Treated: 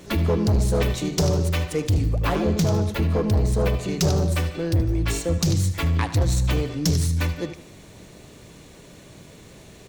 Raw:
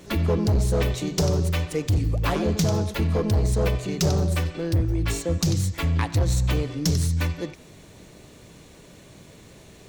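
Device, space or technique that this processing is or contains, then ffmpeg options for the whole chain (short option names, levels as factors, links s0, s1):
parallel distortion: -filter_complex "[0:a]asettb=1/sr,asplit=3[s0][s1][s2];[s0]atrim=end=2.094[s3];[s1]atrim=start=2.09:end=3.8,asetpts=PTS-STARTPTS,afade=t=in:d=0.004:c=qsin,afade=t=out:st=1.706:d=0.004:c=qsin,equalizer=f=7500:w=0.39:g=-3.5[s4];[s2]atrim=start=3.796[s5];[s3][s4]acrossfade=d=0.004:c1=hsin:c2=qsin[s6];[s6][s5]acrossfade=d=0.004:c1=qsin:c2=hsin,aecho=1:1:76|152|228|304:0.178|0.0711|0.0285|0.0114,asplit=2[s7][s8];[s8]asoftclip=type=hard:threshold=0.0944,volume=0.398[s9];[s7][s9]amix=inputs=2:normalize=0,volume=0.891"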